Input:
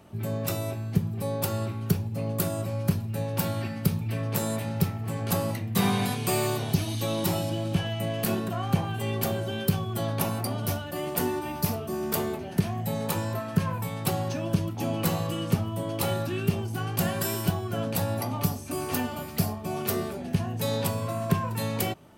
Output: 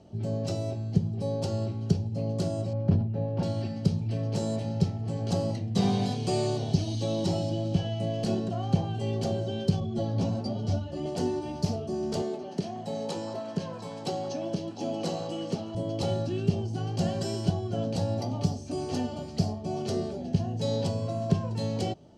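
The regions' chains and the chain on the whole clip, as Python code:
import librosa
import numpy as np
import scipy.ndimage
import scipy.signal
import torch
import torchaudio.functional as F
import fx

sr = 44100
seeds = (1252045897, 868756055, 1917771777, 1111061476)

y = fx.chain(x, sr, fx.lowpass(hz=1900.0, slope=12),
    fx.sustainer(db_per_s=64.0), at=(2.73, 3.43))
y = fx.chain(y, sr, fx.lowpass(hz=7700.0, slope=12),
    fx.low_shelf(hz=340.0, db=7.0),
    fx.ensemble(), at=(9.8, 11.06))
y = fx.chain(y, sr, fx.highpass(hz=250.0, slope=12),
    fx.echo_stepped(ms=175, hz=1100.0, octaves=0.7, feedback_pct=70, wet_db=-5.0), at=(12.22, 15.75))
y = scipy.signal.sosfilt(scipy.signal.butter(4, 6300.0, 'lowpass', fs=sr, output='sos'), y)
y = fx.band_shelf(y, sr, hz=1600.0, db=-12.5, octaves=1.7)
y = fx.notch(y, sr, hz=3600.0, q=8.2)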